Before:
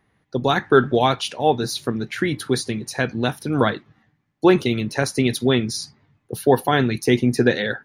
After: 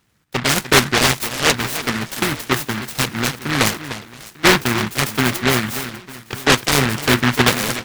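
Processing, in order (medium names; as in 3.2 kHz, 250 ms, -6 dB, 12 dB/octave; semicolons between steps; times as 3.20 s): on a send: echo whose repeats swap between lows and highs 299 ms, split 960 Hz, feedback 63%, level -12 dB; on the sum: delay time shaken by noise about 1.5 kHz, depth 0.45 ms; trim +1.5 dB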